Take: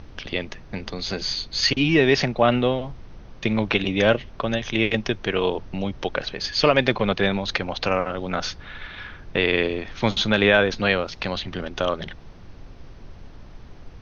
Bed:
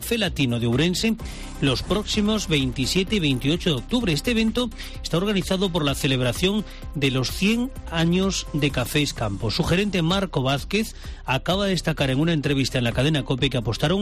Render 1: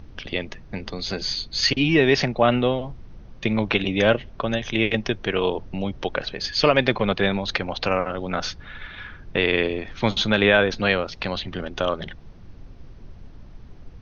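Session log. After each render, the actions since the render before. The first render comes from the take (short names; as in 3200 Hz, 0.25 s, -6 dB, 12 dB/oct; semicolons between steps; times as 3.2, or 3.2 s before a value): denoiser 6 dB, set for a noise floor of -43 dBFS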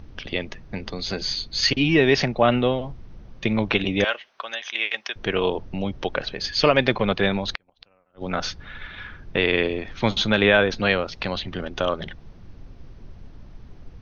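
4.04–5.16 HPF 1100 Hz; 7.51–8.27 flipped gate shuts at -16 dBFS, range -40 dB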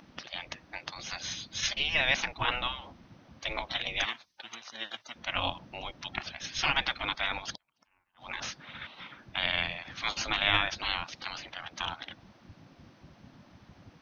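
spectral gate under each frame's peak -15 dB weak; bell 420 Hz -11 dB 0.46 oct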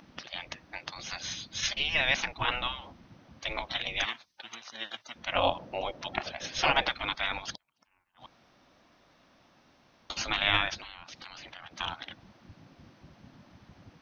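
5.32–6.89 bell 540 Hz +12.5 dB 1.3 oct; 8.26–10.1 room tone; 10.75–11.79 compressor 10:1, threshold -41 dBFS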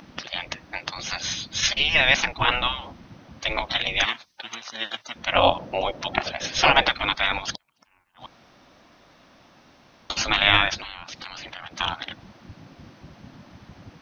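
gain +8.5 dB; limiter -2 dBFS, peak gain reduction 1 dB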